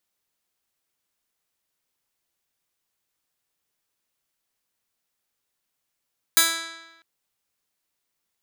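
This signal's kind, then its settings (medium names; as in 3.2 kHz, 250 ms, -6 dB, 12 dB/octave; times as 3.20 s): plucked string E4, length 0.65 s, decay 1.11 s, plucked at 0.12, bright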